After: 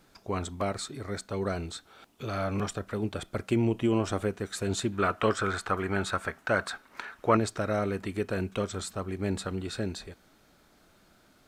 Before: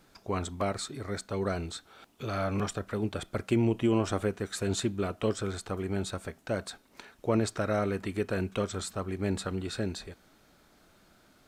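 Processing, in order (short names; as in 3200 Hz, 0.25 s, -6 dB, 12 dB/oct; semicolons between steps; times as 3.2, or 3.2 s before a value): 4.92–7.37 bell 1400 Hz +13.5 dB 1.7 oct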